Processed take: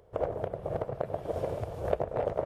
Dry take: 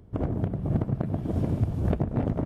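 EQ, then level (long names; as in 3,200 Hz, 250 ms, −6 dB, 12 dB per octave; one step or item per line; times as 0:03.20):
low shelf with overshoot 360 Hz −12 dB, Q 3
0.0 dB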